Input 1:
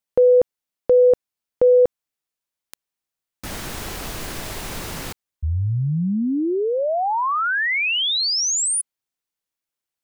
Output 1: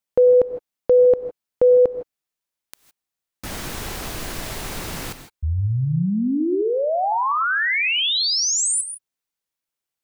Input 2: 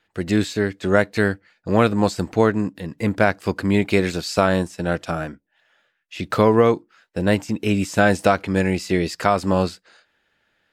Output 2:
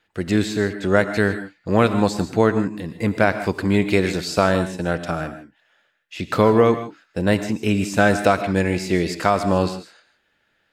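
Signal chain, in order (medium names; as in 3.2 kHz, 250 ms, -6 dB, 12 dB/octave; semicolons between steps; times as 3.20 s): gated-style reverb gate 180 ms rising, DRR 10 dB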